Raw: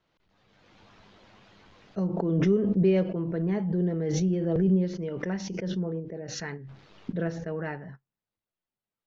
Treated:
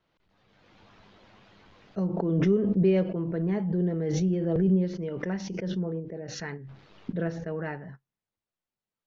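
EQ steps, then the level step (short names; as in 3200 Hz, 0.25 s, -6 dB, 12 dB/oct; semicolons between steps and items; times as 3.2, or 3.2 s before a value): air absorption 50 m; 0.0 dB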